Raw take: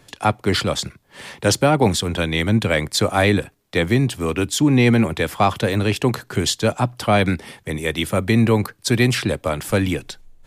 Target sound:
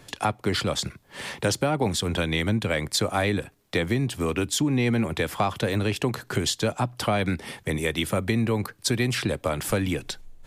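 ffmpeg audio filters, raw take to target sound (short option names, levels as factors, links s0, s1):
-af "acompressor=threshold=0.0562:ratio=3,volume=1.19"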